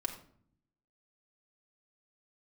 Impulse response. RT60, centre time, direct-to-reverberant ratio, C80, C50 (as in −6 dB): 0.55 s, 15 ms, 1.5 dB, 12.0 dB, 9.0 dB